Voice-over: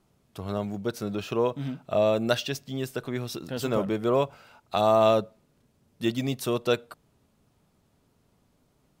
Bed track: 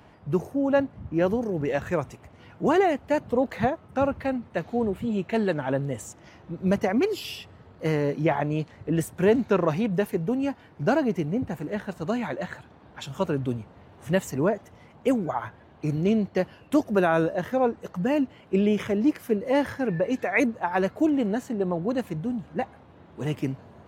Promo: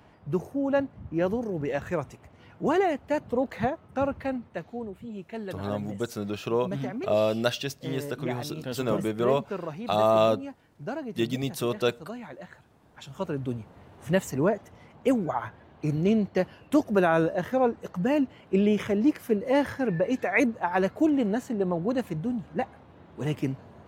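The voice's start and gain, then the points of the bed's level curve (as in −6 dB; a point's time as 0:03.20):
5.15 s, −1.0 dB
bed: 0:04.36 −3 dB
0:04.89 −11.5 dB
0:12.54 −11.5 dB
0:13.80 −0.5 dB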